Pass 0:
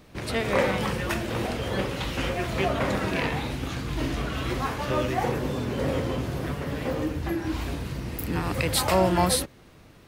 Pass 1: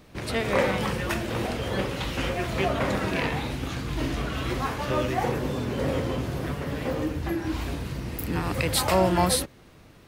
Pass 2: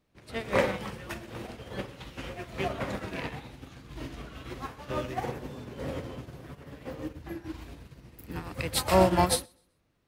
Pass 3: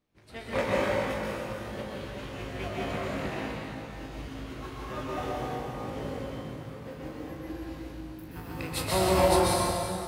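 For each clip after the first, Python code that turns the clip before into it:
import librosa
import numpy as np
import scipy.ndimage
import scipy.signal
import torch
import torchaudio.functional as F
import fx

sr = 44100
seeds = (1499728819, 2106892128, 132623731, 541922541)

y1 = x
y2 = fx.echo_feedback(y1, sr, ms=127, feedback_pct=32, wet_db=-14)
y2 = fx.upward_expand(y2, sr, threshold_db=-34.0, expansion=2.5)
y2 = y2 * librosa.db_to_amplitude(1.5)
y3 = fx.comb_fb(y2, sr, f0_hz=53.0, decay_s=0.25, harmonics='all', damping=0.0, mix_pct=90)
y3 = fx.rev_plate(y3, sr, seeds[0], rt60_s=3.0, hf_ratio=0.75, predelay_ms=115, drr_db=-6.0)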